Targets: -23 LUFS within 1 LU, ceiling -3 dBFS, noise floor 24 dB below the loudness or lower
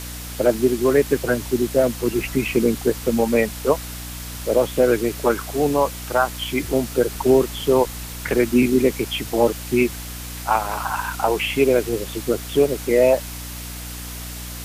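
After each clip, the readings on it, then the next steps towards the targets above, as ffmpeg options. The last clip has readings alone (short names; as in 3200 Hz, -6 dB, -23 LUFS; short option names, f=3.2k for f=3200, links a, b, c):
hum 60 Hz; harmonics up to 300 Hz; hum level -32 dBFS; noise floor -33 dBFS; noise floor target -45 dBFS; loudness -20.5 LUFS; peak -5.0 dBFS; loudness target -23.0 LUFS
-> -af "bandreject=f=60:t=h:w=6,bandreject=f=120:t=h:w=6,bandreject=f=180:t=h:w=6,bandreject=f=240:t=h:w=6,bandreject=f=300:t=h:w=6"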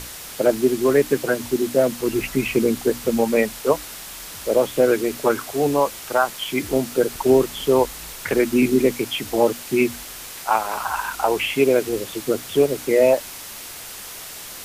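hum none; noise floor -36 dBFS; noise floor target -45 dBFS
-> -af "afftdn=nr=9:nf=-36"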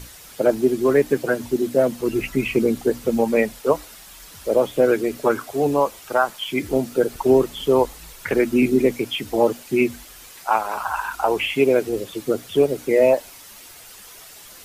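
noise floor -43 dBFS; noise floor target -45 dBFS
-> -af "afftdn=nr=6:nf=-43"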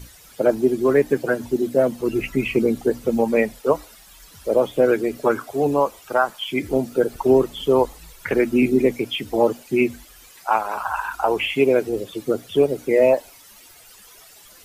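noise floor -48 dBFS; loudness -21.0 LUFS; peak -5.0 dBFS; loudness target -23.0 LUFS
-> -af "volume=-2dB"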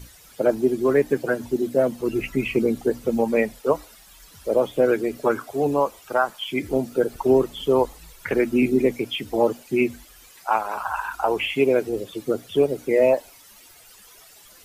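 loudness -23.0 LUFS; peak -7.0 dBFS; noise floor -50 dBFS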